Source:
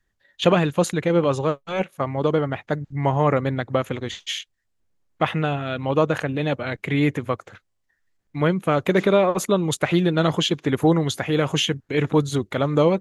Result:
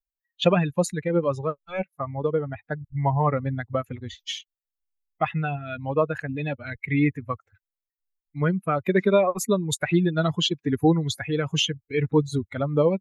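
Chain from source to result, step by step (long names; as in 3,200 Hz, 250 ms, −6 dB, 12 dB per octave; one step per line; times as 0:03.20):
spectral dynamics exaggerated over time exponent 2
in parallel at −2 dB: downward compressor, threshold −32 dBFS, peak gain reduction 16.5 dB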